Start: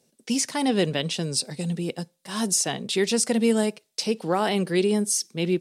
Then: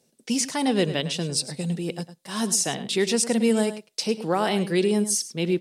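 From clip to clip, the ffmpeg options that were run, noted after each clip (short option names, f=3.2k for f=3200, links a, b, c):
-filter_complex "[0:a]asplit=2[a][b];[b]adelay=105,volume=-13dB,highshelf=f=4k:g=-2.36[c];[a][c]amix=inputs=2:normalize=0"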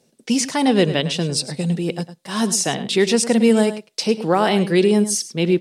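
-af "highshelf=f=6.4k:g=-7,volume=6.5dB"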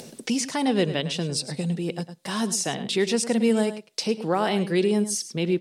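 -af "acompressor=mode=upward:threshold=-17dB:ratio=2.5,volume=-6.5dB"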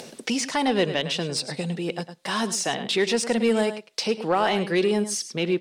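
-filter_complex "[0:a]asplit=2[a][b];[b]highpass=f=720:p=1,volume=11dB,asoftclip=type=tanh:threshold=-10dB[c];[a][c]amix=inputs=2:normalize=0,lowpass=f=3.5k:p=1,volume=-6dB"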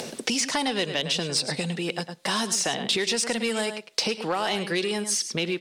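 -filter_complex "[0:a]acrossover=split=1000|3600[a][b][c];[a]acompressor=threshold=-35dB:ratio=4[d];[b]acompressor=threshold=-38dB:ratio=4[e];[c]acompressor=threshold=-30dB:ratio=4[f];[d][e][f]amix=inputs=3:normalize=0,volume=6dB"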